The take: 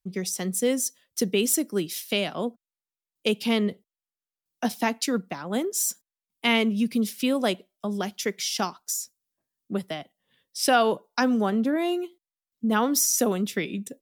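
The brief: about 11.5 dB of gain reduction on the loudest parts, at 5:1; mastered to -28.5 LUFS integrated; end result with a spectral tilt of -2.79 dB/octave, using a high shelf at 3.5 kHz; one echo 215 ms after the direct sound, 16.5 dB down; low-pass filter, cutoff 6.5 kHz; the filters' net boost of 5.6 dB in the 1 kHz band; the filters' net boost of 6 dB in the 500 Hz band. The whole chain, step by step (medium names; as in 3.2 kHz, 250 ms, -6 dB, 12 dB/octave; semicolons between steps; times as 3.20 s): low-pass 6.5 kHz; peaking EQ 500 Hz +6 dB; peaking EQ 1 kHz +4.5 dB; treble shelf 3.5 kHz +7.5 dB; compression 5:1, threshold -24 dBFS; delay 215 ms -16.5 dB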